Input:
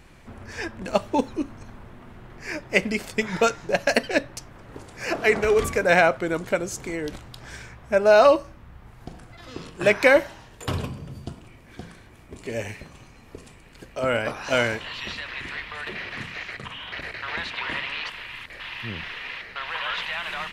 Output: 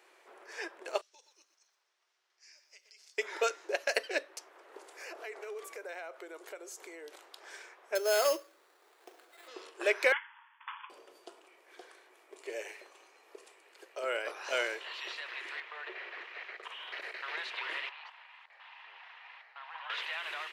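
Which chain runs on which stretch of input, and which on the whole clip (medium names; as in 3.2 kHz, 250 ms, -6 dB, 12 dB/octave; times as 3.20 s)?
1.01–3.18 s: band-pass filter 5.5 kHz, Q 3.1 + compression, threshold -46 dBFS + bit-crushed delay 121 ms, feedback 35%, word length 11-bit, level -10.5 dB
4.87–7.26 s: treble shelf 11 kHz +8.5 dB + compression 4:1, threshold -35 dBFS
7.95–9.48 s: peaking EQ 900 Hz -4.5 dB 1.2 oct + sample-rate reducer 5.8 kHz
10.12–10.90 s: median filter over 15 samples + brick-wall FIR band-pass 830–3500 Hz + treble shelf 2.2 kHz +8.5 dB
15.60–16.63 s: high-pass 260 Hz + word length cut 8-bit, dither none + distance through air 220 m
17.89–19.90 s: ladder high-pass 730 Hz, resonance 60% + distance through air 100 m
whole clip: elliptic high-pass 370 Hz, stop band 50 dB; dynamic bell 830 Hz, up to -6 dB, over -36 dBFS, Q 1.2; trim -7 dB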